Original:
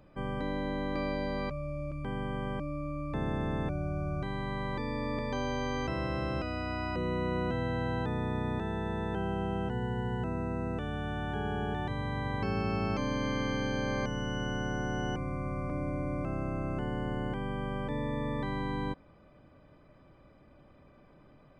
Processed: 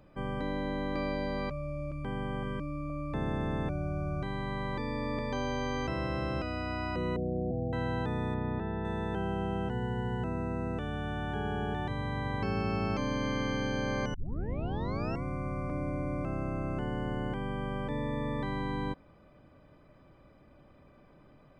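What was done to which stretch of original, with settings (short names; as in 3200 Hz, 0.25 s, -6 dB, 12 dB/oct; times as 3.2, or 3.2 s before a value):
2.43–2.9 Butterworth band-stop 720 Hz, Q 2.1
7.16–7.73 Chebyshev low-pass 780 Hz, order 8
8.34–8.85 air absorption 330 m
14.14 tape start 1.09 s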